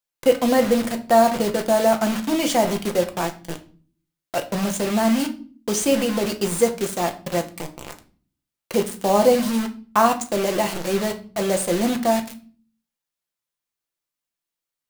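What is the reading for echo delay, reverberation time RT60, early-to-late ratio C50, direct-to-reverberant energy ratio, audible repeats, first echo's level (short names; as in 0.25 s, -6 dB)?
none, 0.40 s, 14.0 dB, 4.5 dB, none, none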